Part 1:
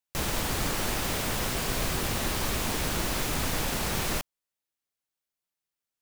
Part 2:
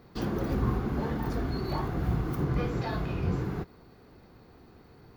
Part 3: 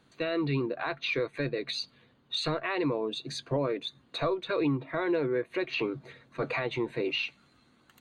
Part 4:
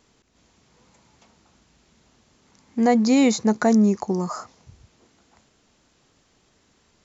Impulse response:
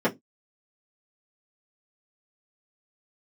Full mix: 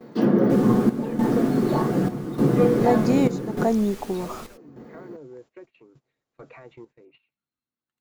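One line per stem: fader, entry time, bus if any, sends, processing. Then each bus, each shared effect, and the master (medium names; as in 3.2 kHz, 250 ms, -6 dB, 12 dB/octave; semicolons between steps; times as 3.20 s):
-10.5 dB, 0.35 s, no send, three-phase chorus
+2.0 dB, 0.00 s, send -9.5 dB, high-pass 120 Hz; auto duck -11 dB, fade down 0.40 s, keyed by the fourth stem
-13.0 dB, 0.00 s, no send, low-pass that closes with the level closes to 740 Hz, closed at -25 dBFS
-11.0 dB, 0.00 s, no send, peaking EQ 510 Hz +9.5 dB 2.8 oct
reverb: on, pre-delay 3 ms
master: gate -49 dBFS, range -18 dB; square tremolo 0.84 Hz, depth 65%, duty 75%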